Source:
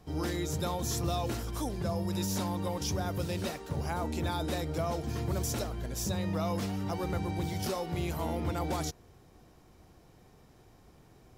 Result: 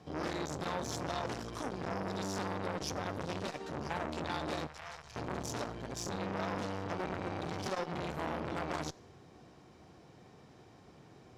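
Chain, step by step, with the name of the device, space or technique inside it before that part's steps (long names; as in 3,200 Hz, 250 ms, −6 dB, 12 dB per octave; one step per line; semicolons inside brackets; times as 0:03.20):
valve radio (band-pass filter 110–6,000 Hz; tube saturation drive 29 dB, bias 0.5; saturating transformer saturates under 1,200 Hz)
0:04.67–0:05.16: guitar amp tone stack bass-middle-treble 10-0-10
dense smooth reverb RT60 0.79 s, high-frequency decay 0.9×, DRR 19 dB
level +5 dB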